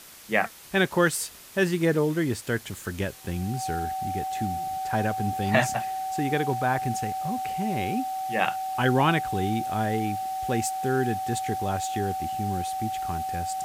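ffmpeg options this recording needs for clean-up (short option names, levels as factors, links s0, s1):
-af "bandreject=f=760:w=30,afwtdn=0.005"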